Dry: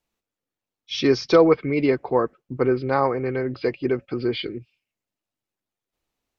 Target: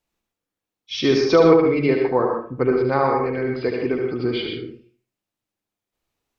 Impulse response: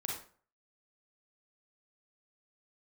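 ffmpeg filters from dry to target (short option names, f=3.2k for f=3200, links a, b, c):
-filter_complex "[0:a]asplit=2[a][b];[1:a]atrim=start_sample=2205,adelay=74[c];[b][c]afir=irnorm=-1:irlink=0,volume=-2.5dB[d];[a][d]amix=inputs=2:normalize=0"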